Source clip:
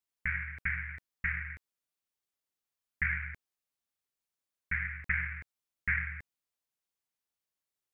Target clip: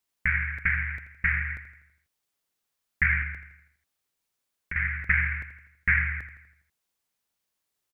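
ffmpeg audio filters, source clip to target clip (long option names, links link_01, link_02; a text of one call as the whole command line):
ffmpeg -i in.wav -filter_complex "[0:a]asettb=1/sr,asplit=3[link_01][link_02][link_03];[link_01]atrim=end=3.224[link_04];[link_02]atrim=start=3.22:end=4.76,asetpts=PTS-STARTPTS,afade=type=in:duration=0.004:curve=qsin,afade=type=out:start_time=1.536:duration=0.004:curve=qsin,acrossover=split=380|1500[link_05][link_06][link_07];[link_05]acompressor=threshold=-49dB:ratio=4[link_08];[link_06]acompressor=threshold=-55dB:ratio=4[link_09];[link_07]acompressor=threshold=-46dB:ratio=4[link_10];[link_08][link_09][link_10]amix=inputs=3:normalize=0[link_11];[link_03]atrim=start=4.756[link_12];[link_04][link_11]acrossfade=duration=0.004:curve1=hsin:curve2=qsin[link_13];[link_13][link_12]acrossfade=duration=0.004:curve1=qsin:curve2=hsin,aecho=1:1:82|164|246|328|410|492:0.251|0.133|0.0706|0.0374|0.0198|0.0105,volume=8dB" out.wav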